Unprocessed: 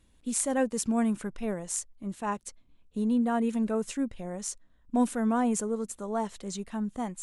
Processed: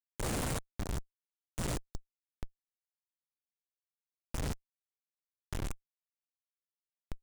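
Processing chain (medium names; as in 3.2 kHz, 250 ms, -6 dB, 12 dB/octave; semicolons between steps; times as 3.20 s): spectrogram pixelated in time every 200 ms; differentiator; Schmitt trigger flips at -34.5 dBFS; trim +14.5 dB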